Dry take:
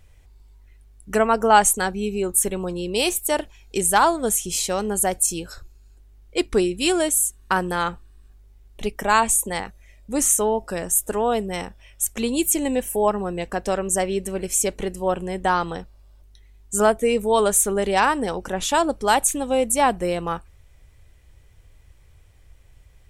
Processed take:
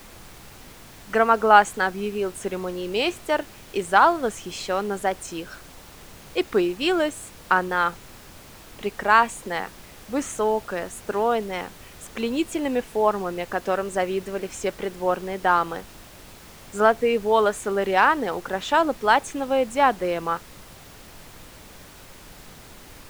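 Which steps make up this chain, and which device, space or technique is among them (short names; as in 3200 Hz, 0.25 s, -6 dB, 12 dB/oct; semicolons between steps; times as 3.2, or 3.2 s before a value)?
horn gramophone (BPF 220–3500 Hz; bell 1400 Hz +5 dB; wow and flutter; pink noise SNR 20 dB); gain -1 dB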